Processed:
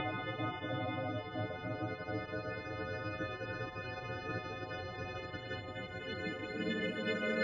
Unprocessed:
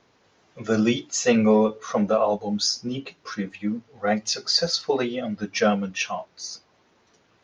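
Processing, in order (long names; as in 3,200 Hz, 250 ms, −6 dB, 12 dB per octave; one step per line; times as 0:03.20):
every partial snapped to a pitch grid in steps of 3 semitones
extreme stretch with random phases 27×, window 0.25 s, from 0:05.27
gate on every frequency bin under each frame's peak −15 dB weak
high-frequency loss of the air 430 metres
level +5 dB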